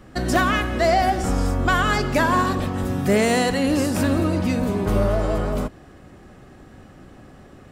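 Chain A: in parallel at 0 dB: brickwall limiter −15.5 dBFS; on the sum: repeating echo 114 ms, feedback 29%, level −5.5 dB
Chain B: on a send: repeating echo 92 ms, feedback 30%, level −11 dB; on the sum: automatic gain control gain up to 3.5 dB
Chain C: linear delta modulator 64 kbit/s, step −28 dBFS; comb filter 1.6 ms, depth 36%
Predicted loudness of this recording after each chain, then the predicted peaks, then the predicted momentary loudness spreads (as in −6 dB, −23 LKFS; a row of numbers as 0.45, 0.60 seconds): −15.5, −18.0, −20.5 LKFS; −2.0, −4.0, −6.0 dBFS; 5, 6, 16 LU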